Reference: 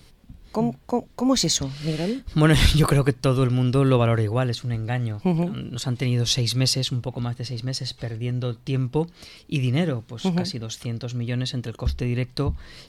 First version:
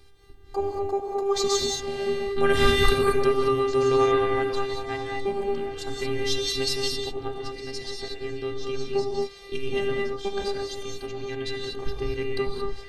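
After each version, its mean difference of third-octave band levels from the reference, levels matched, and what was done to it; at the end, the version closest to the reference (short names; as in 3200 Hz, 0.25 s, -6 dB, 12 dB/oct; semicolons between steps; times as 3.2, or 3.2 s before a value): 8.5 dB: robotiser 398 Hz; high shelf 4300 Hz -8.5 dB; on a send: delay with a stepping band-pass 0.771 s, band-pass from 770 Hz, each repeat 1.4 oct, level -8.5 dB; on the sum: non-linear reverb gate 0.25 s rising, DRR 0 dB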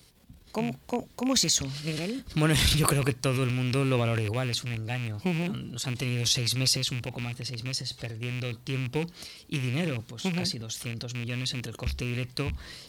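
5.0 dB: rattling part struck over -24 dBFS, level -21 dBFS; transient shaper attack +2 dB, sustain +8 dB; HPF 50 Hz; high shelf 4600 Hz +9 dB; gain -8 dB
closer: second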